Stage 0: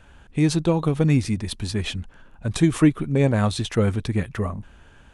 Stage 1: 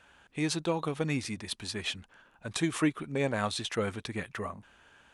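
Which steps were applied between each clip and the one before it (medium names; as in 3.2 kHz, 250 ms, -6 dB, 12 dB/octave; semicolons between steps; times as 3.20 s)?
high-pass 1.4 kHz 6 dB/octave; tilt EQ -1.5 dB/octave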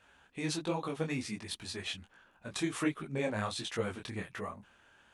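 detune thickener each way 46 cents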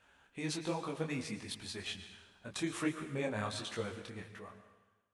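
fade out at the end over 1.62 s; plate-style reverb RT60 1.1 s, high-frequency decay 1×, pre-delay 100 ms, DRR 10 dB; trim -3 dB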